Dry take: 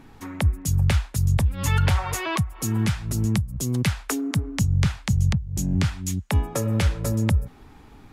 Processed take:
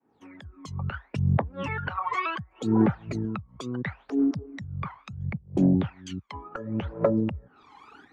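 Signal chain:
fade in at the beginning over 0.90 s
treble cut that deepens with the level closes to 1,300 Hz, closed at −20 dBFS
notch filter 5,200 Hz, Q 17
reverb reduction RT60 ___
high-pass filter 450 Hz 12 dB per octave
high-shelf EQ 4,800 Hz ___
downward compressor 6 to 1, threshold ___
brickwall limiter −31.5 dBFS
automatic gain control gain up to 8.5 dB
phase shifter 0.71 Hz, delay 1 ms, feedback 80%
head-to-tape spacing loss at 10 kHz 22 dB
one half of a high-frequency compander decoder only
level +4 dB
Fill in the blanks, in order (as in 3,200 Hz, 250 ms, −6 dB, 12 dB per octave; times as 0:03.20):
1.5 s, +5 dB, −40 dBFS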